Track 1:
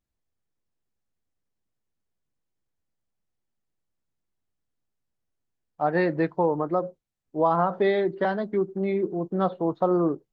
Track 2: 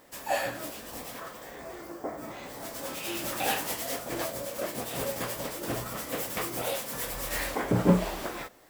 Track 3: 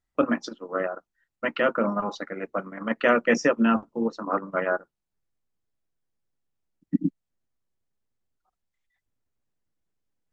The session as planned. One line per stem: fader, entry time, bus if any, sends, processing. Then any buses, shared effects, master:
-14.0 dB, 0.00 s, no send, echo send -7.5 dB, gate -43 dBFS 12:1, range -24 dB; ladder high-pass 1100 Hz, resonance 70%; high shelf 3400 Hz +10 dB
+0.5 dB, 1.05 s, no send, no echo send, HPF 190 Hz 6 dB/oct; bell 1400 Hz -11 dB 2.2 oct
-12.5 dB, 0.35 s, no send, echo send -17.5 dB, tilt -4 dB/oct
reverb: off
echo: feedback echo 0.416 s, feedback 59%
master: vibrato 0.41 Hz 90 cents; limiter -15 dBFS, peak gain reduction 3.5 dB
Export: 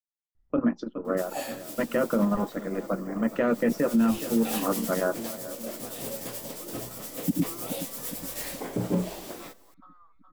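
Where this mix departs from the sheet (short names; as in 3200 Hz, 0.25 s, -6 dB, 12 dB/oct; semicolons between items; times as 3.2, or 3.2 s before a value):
stem 1 -14.0 dB -> -22.0 dB; stem 3 -12.5 dB -> -3.5 dB; master: missing vibrato 0.41 Hz 90 cents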